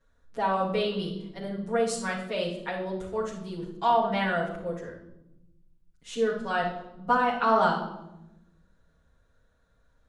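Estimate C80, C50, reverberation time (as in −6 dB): 9.0 dB, 5.0 dB, 0.90 s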